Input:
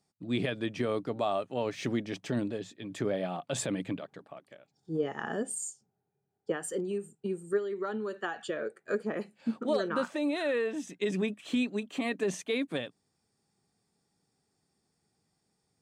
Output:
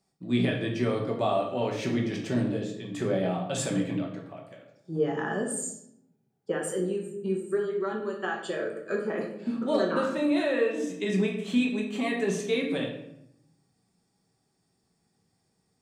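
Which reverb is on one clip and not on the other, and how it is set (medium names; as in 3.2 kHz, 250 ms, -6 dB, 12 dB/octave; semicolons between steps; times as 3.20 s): simulated room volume 190 m³, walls mixed, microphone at 1.1 m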